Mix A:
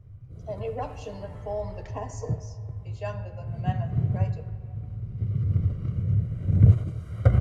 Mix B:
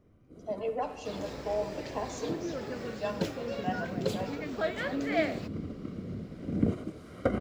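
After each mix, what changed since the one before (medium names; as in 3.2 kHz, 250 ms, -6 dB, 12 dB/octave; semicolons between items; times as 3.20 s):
first sound: add resonant low shelf 170 Hz -14 dB, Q 3; second sound: unmuted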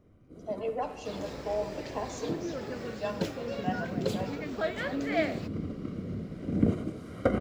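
first sound: send +9.5 dB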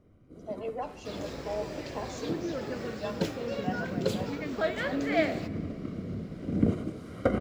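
speech: send -11.0 dB; second sound: send on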